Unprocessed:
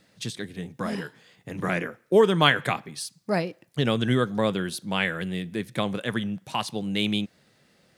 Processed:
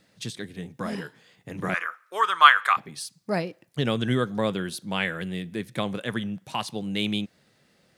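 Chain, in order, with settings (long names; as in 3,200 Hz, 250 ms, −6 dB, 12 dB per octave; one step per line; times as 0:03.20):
0:01.74–0:02.77: high-pass with resonance 1,200 Hz, resonance Q 4.9
level −1.5 dB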